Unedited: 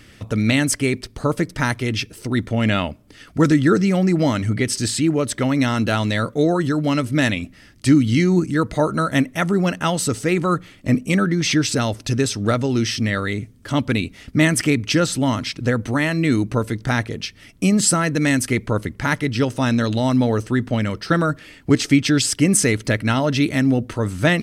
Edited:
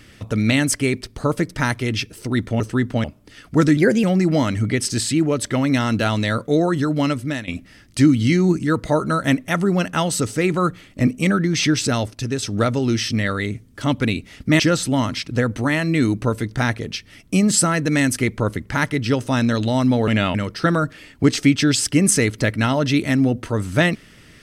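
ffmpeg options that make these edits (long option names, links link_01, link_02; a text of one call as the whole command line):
ffmpeg -i in.wav -filter_complex "[0:a]asplit=11[link_01][link_02][link_03][link_04][link_05][link_06][link_07][link_08][link_09][link_10][link_11];[link_01]atrim=end=2.602[link_12];[link_02]atrim=start=20.368:end=20.812[link_13];[link_03]atrim=start=2.868:end=3.604[link_14];[link_04]atrim=start=3.6:end=3.91,asetpts=PTS-STARTPTS,asetrate=51597,aresample=44100[link_15];[link_05]atrim=start=3.906:end=7.35,asetpts=PTS-STARTPTS,afade=type=out:start_time=3.034:duration=0.41:silence=0.133352[link_16];[link_06]atrim=start=7.35:end=11.982,asetpts=PTS-STARTPTS,afade=type=in:duration=0.004:curve=hsin:silence=0.133352[link_17];[link_07]atrim=start=11.978:end=12.302,asetpts=PTS-STARTPTS,volume=-4.5dB[link_18];[link_08]atrim=start=12.298:end=14.472[link_19];[link_09]atrim=start=14.888:end=20.372[link_20];[link_10]atrim=start=2.598:end=2.872[link_21];[link_11]atrim=start=20.808[link_22];[link_12][link_13]acrossfade=duration=0.004:curve1=hsin:curve2=hsin[link_23];[link_23][link_14]acrossfade=duration=0.004:curve1=hsin:curve2=hsin[link_24];[link_24][link_15]acrossfade=duration=0.004:curve1=hsin:curve2=hsin[link_25];[link_16][link_17]concat=n=2:v=0:a=1[link_26];[link_25][link_26]acrossfade=duration=0.004:curve1=hsin:curve2=hsin[link_27];[link_27][link_18]acrossfade=duration=0.004:curve1=hsin:curve2=hsin[link_28];[link_28][link_19]acrossfade=duration=0.004:curve1=hsin:curve2=hsin[link_29];[link_29][link_20]acrossfade=duration=0.004:curve1=hsin:curve2=hsin[link_30];[link_30][link_21]acrossfade=duration=0.004:curve1=hsin:curve2=hsin[link_31];[link_31][link_22]acrossfade=duration=0.004:curve1=hsin:curve2=hsin" out.wav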